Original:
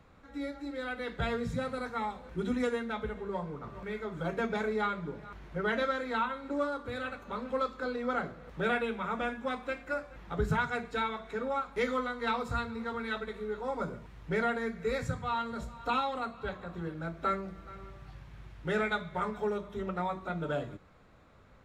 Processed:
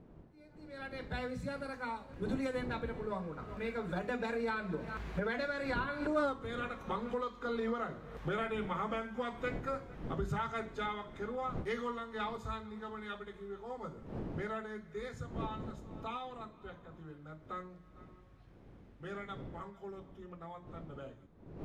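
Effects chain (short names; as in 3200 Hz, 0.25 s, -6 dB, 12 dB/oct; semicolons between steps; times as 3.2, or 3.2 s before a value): Doppler pass-by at 6.24, 23 m/s, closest 1.3 m; recorder AGC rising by 36 dB/s; wind noise 300 Hz -53 dBFS; gain +3 dB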